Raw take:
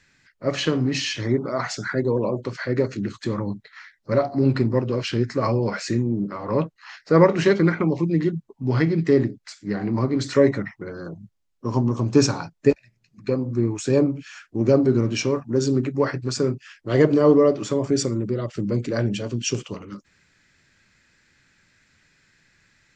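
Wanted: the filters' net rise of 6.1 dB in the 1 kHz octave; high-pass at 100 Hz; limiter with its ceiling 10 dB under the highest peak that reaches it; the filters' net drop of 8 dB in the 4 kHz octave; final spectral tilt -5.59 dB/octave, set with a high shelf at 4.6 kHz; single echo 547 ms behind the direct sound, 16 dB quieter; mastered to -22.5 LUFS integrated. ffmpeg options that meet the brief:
-af "highpass=100,equalizer=f=1000:t=o:g=8,equalizer=f=4000:t=o:g=-9,highshelf=f=4600:g=-5.5,alimiter=limit=0.316:level=0:latency=1,aecho=1:1:547:0.158,volume=1.12"

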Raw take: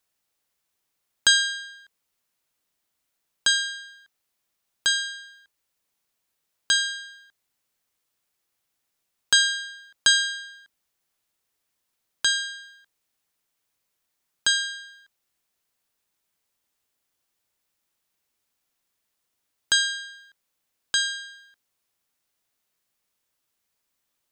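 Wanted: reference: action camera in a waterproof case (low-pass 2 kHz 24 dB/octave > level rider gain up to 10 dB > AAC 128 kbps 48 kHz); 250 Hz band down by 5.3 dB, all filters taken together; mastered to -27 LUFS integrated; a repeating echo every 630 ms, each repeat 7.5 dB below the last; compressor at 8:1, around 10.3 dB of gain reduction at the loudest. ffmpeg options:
-af "equalizer=f=250:t=o:g=-7.5,acompressor=threshold=0.0708:ratio=8,lowpass=f=2000:w=0.5412,lowpass=f=2000:w=1.3066,aecho=1:1:630|1260|1890|2520|3150:0.422|0.177|0.0744|0.0312|0.0131,dynaudnorm=m=3.16,volume=1.58" -ar 48000 -c:a aac -b:a 128k

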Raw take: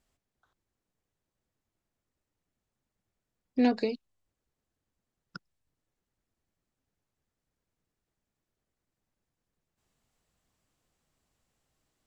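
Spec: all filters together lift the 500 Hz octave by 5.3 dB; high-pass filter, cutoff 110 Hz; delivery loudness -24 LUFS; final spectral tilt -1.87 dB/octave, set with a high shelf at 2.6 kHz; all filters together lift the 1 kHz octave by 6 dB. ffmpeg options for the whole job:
-af "highpass=110,equalizer=f=500:t=o:g=4.5,equalizer=f=1000:t=o:g=7.5,highshelf=f=2600:g=-4,volume=1.33"

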